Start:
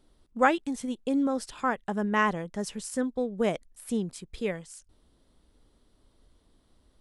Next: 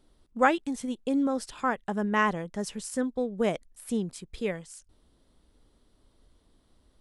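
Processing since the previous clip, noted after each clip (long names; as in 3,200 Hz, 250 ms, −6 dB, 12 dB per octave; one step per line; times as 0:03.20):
no processing that can be heard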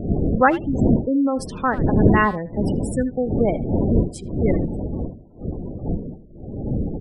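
wind on the microphone 270 Hz −29 dBFS
gate on every frequency bin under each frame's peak −20 dB strong
far-end echo of a speakerphone 80 ms, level −16 dB
level +6.5 dB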